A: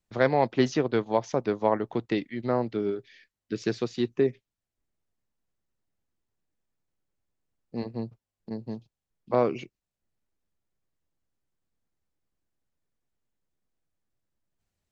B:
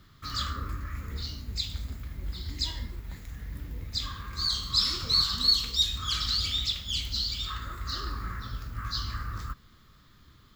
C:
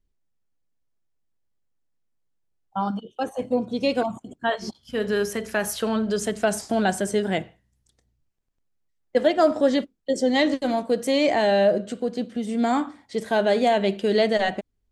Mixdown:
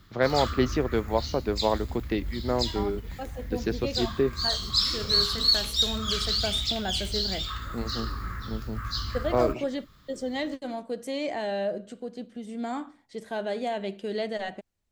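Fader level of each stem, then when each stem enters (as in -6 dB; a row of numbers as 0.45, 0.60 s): -1.0, +1.0, -10.5 dB; 0.00, 0.00, 0.00 s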